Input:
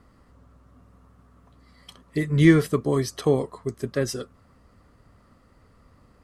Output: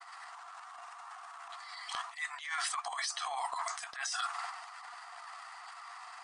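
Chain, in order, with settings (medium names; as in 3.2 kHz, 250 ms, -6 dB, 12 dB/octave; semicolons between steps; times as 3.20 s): brick-wall FIR band-pass 680–9900 Hz; granulator 100 ms, grains 20 per s, spray 10 ms, pitch spread up and down by 0 st; transient shaper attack -11 dB, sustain +10 dB; reverse; compression 12:1, threshold -52 dBFS, peak gain reduction 27.5 dB; reverse; trim +18 dB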